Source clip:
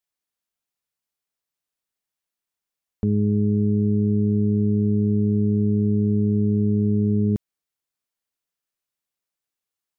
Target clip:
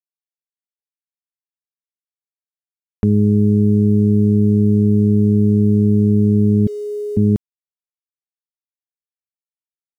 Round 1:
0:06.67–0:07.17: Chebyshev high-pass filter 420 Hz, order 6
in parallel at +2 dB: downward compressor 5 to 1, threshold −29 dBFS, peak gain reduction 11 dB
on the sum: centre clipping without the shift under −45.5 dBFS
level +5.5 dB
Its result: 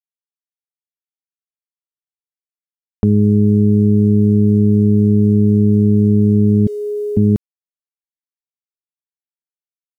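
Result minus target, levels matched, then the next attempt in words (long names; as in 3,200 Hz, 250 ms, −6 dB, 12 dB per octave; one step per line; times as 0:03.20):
downward compressor: peak gain reduction −8.5 dB
0:06.67–0:07.17: Chebyshev high-pass filter 420 Hz, order 6
in parallel at +2 dB: downward compressor 5 to 1, threshold −39.5 dBFS, peak gain reduction 19 dB
on the sum: centre clipping without the shift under −45.5 dBFS
level +5.5 dB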